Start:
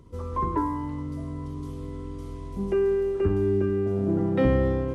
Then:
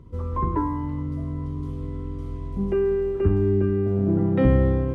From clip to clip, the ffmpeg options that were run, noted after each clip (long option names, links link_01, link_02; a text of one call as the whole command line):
ffmpeg -i in.wav -af "bass=frequency=250:gain=6,treble=frequency=4000:gain=-9" out.wav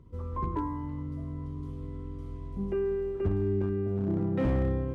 ffmpeg -i in.wav -af "asoftclip=type=hard:threshold=-14.5dB,volume=-7.5dB" out.wav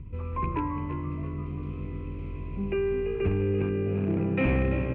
ffmpeg -i in.wav -filter_complex "[0:a]acrossover=split=190|1100[link_01][link_02][link_03];[link_01]acompressor=mode=upward:threshold=-32dB:ratio=2.5[link_04];[link_04][link_02][link_03]amix=inputs=3:normalize=0,lowpass=frequency=2500:width_type=q:width=12,asplit=5[link_05][link_06][link_07][link_08][link_09];[link_06]adelay=338,afreqshift=57,volume=-10.5dB[link_10];[link_07]adelay=676,afreqshift=114,volume=-18.2dB[link_11];[link_08]adelay=1014,afreqshift=171,volume=-26dB[link_12];[link_09]adelay=1352,afreqshift=228,volume=-33.7dB[link_13];[link_05][link_10][link_11][link_12][link_13]amix=inputs=5:normalize=0,volume=1.5dB" out.wav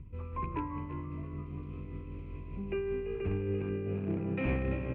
ffmpeg -i in.wav -af "tremolo=f=5.1:d=0.33,volume=-5.5dB" out.wav